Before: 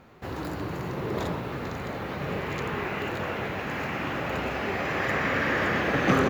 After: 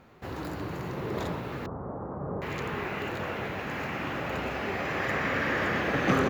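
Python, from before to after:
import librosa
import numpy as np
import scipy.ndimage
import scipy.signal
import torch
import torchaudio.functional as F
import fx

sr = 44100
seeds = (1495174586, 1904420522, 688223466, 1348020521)

y = fx.steep_lowpass(x, sr, hz=1200.0, slope=36, at=(1.66, 2.42))
y = y * 10.0 ** (-2.5 / 20.0)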